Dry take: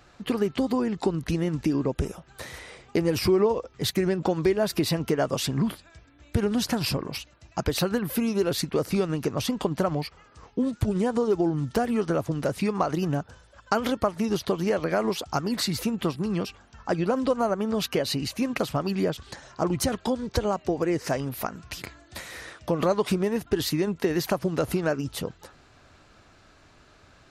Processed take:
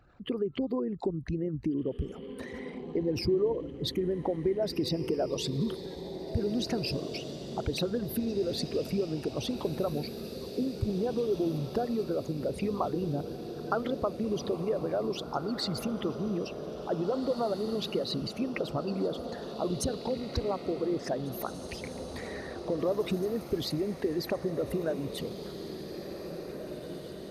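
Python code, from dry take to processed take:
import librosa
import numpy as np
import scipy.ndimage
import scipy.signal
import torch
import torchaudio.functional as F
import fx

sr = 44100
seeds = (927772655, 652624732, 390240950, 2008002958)

y = fx.envelope_sharpen(x, sr, power=2.0)
y = fx.echo_diffused(y, sr, ms=1964, feedback_pct=60, wet_db=-9.0)
y = F.gain(torch.from_numpy(y), -6.0).numpy()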